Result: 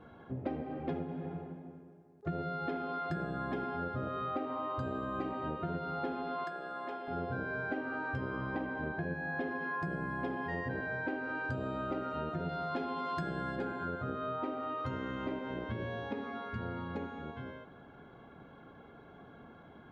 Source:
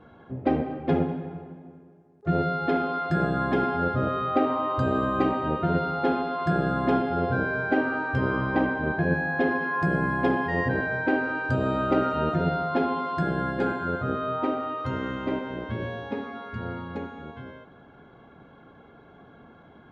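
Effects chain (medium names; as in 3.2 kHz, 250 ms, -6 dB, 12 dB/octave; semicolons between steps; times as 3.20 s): compression, threshold -31 dBFS, peak gain reduction 13 dB; 6.44–7.08 s: high-pass 520 Hz 12 dB/octave; 12.49–13.56 s: treble shelf 3.3 kHz +9 dB; trim -3 dB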